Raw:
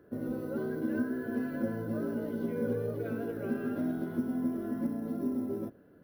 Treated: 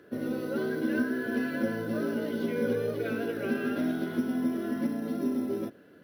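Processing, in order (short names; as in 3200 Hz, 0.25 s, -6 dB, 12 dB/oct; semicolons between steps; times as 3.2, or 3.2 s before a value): weighting filter D; gain +4.5 dB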